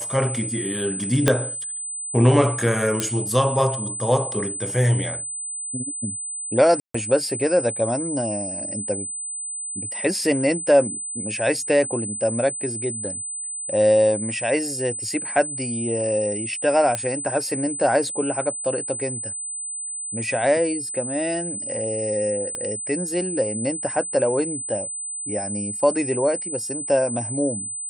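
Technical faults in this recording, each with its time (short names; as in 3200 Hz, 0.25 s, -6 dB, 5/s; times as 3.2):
tone 8100 Hz -28 dBFS
1.28 pop -2 dBFS
3 pop -7 dBFS
6.8–6.94 gap 0.144 s
16.95 pop -10 dBFS
22.55 pop -16 dBFS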